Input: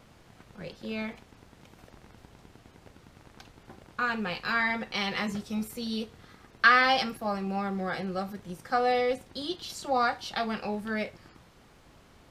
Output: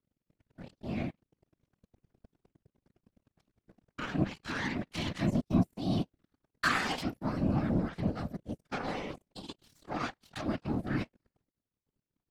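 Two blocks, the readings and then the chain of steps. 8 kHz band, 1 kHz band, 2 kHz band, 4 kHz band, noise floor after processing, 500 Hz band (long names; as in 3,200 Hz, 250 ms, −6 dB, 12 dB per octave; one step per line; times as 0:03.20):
−3.0 dB, −10.5 dB, −10.0 dB, −8.0 dB, below −85 dBFS, −8.0 dB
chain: low shelf with overshoot 310 Hz +11.5 dB, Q 1.5
in parallel at 0 dB: downward compressor, threshold −30 dBFS, peak gain reduction 14.5 dB
on the sum: soft clipping −12.5 dBFS, distortion −21 dB
power curve on the samples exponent 3
random phases in short frames
level −3 dB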